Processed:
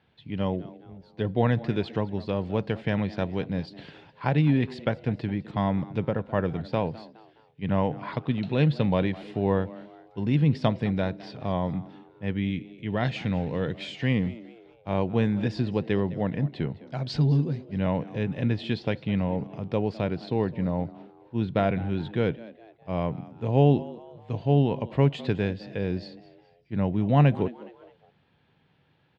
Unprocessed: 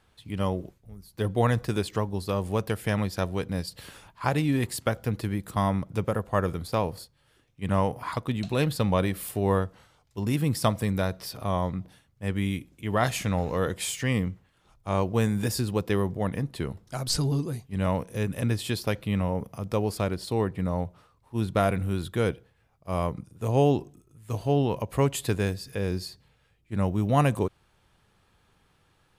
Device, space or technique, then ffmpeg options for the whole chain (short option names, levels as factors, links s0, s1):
frequency-shifting delay pedal into a guitar cabinet: -filter_complex "[0:a]asplit=4[s0][s1][s2][s3];[s1]adelay=208,afreqshift=110,volume=0.112[s4];[s2]adelay=416,afreqshift=220,volume=0.0473[s5];[s3]adelay=624,afreqshift=330,volume=0.0197[s6];[s0][s4][s5][s6]amix=inputs=4:normalize=0,highpass=98,equalizer=f=150:t=q:w=4:g=7,equalizer=f=250:t=q:w=4:g=3,equalizer=f=1200:t=q:w=4:g=-9,lowpass=f=3800:w=0.5412,lowpass=f=3800:w=1.3066,asettb=1/sr,asplit=3[s7][s8][s9];[s7]atrim=end=12.374[s10];[s8]atrim=start=12.37:end=14.02,asetpts=PTS-STARTPTS,afade=t=in:d=0.004:c=qsin,afade=t=out:st=1.646:d=0.004:c=qsin,equalizer=f=860:t=o:w=1.9:g=-4.5[s11];[s9]atrim=start=14.016[s12];[s10][s11]acrossfade=d=0.004:c1=hsin:c2=qsin[s13];[s13][s12]acrossfade=d=0.004:c1=qsin:c2=hsin"